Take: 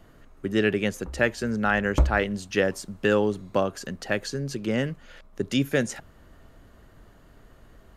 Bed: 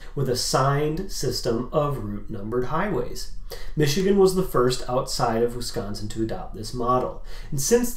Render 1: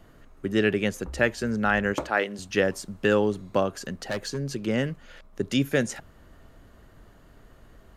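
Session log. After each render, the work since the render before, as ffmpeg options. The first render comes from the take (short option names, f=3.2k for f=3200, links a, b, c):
-filter_complex "[0:a]asettb=1/sr,asplit=3[a][b][c];[a]atrim=end=1.944[d];[b]atrim=start=1.94:end=2.39,asetpts=PTS-STARTPTS,afade=t=in:d=0.004:c=qsin,afade=t=out:st=0.446:d=0.004:c=qsin,highpass=310[e];[c]atrim=start=2.386[f];[d][e]acrossfade=d=0.004:c1=hsin:c2=qsin[g];[g][f]acrossfade=d=0.004:c1=qsin:c2=hsin,asettb=1/sr,asplit=3[h][i][j];[h]atrim=end=3.964[k];[i]atrim=start=3.96:end=4.54,asetpts=PTS-STARTPTS,afade=t=in:d=0.004:c=qsin,afade=t=out:st=0.576:d=0.004:c=qsin,volume=24dB,asoftclip=hard,volume=-24dB[l];[j]atrim=start=4.536[m];[k][l]acrossfade=d=0.004:c1=hsin:c2=qsin[n];[n][m]acrossfade=d=0.004:c1=qsin:c2=hsin"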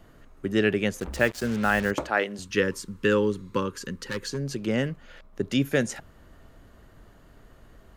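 -filter_complex "[0:a]asettb=1/sr,asplit=3[a][b][c];[a]atrim=end=1.004[d];[b]atrim=start=1:end=1.91,asetpts=PTS-STARTPTS,afade=t=in:d=0.004:c=qsin,afade=t=out:st=0.906:d=0.004:c=qsin,acrusher=bits=5:mix=0:aa=0.5[e];[c]atrim=start=1.906[f];[d][e]acrossfade=d=0.004:c1=hsin:c2=qsin[g];[g][f]acrossfade=d=0.004:c1=qsin:c2=hsin,asettb=1/sr,asplit=3[h][i][j];[h]atrim=end=2.434[k];[i]atrim=start=2.43:end=4.31,asetpts=PTS-STARTPTS,afade=t=in:d=0.004:c=qsin,afade=t=out:st=1.876:d=0.004:c=qsin,asuperstop=centerf=690:order=8:qfactor=2[l];[j]atrim=start=4.306[m];[k][l]acrossfade=d=0.004:c1=hsin:c2=qsin[n];[n][m]acrossfade=d=0.004:c1=qsin:c2=hsin,asettb=1/sr,asplit=3[o][p][q];[o]atrim=end=4.884[r];[p]atrim=start=4.88:end=5.65,asetpts=PTS-STARTPTS,afade=t=in:d=0.004:c=qsin,afade=t=out:st=0.766:d=0.004:c=qsin,equalizer=f=8.8k:t=o:w=1.8:g=-4[s];[q]atrim=start=5.646[t];[r][s]acrossfade=d=0.004:c1=hsin:c2=qsin[u];[u][t]acrossfade=d=0.004:c1=qsin:c2=hsin"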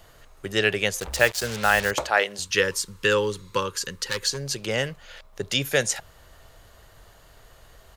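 -af "firequalizer=gain_entry='entry(110,0);entry(240,-11);entry(470,2);entry(820,5);entry(1300,3);entry(3900,11)':delay=0.05:min_phase=1"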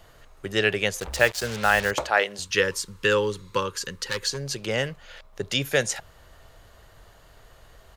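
-af "highshelf=f=5.2k:g=-4.5"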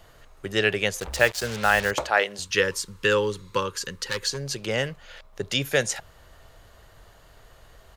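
-af anull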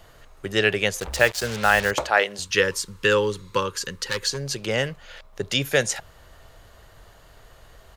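-af "volume=2dB,alimiter=limit=-2dB:level=0:latency=1"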